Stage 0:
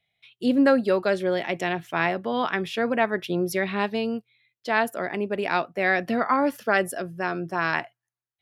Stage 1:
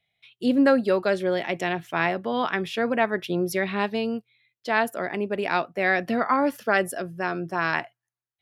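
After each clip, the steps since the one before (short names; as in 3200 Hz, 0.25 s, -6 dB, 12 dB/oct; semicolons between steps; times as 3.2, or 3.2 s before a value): nothing audible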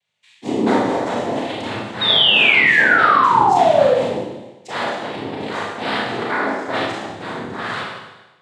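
noise vocoder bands 6; painted sound fall, 2.01–3.94, 480–3800 Hz -15 dBFS; Schroeder reverb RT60 1.1 s, combs from 26 ms, DRR -4.5 dB; gain -4 dB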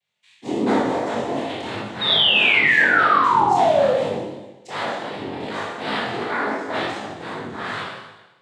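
chorus 2.7 Hz, delay 19 ms, depth 4.8 ms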